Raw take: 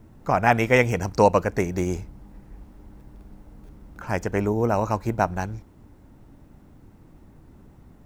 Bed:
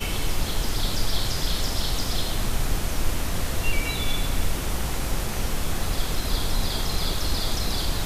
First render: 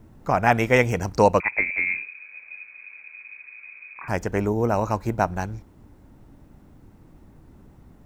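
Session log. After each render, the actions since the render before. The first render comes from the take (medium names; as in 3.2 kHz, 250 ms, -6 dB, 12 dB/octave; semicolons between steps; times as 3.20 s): 1.40–4.08 s: frequency inversion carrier 2.5 kHz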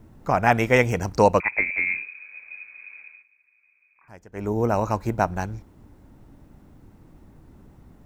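3.02–4.56 s: dip -20.5 dB, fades 0.24 s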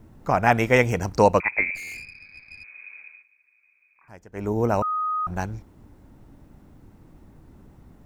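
1.75–2.64 s: valve stage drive 35 dB, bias 0.75; 4.82–5.27 s: bleep 1.25 kHz -22.5 dBFS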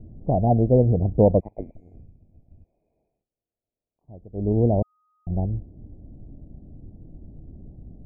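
elliptic low-pass 690 Hz, stop band 50 dB; bass shelf 190 Hz +10.5 dB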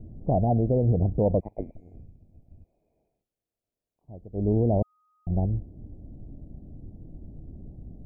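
peak limiter -14.5 dBFS, peak gain reduction 8.5 dB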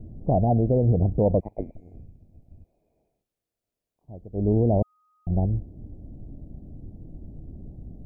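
trim +2 dB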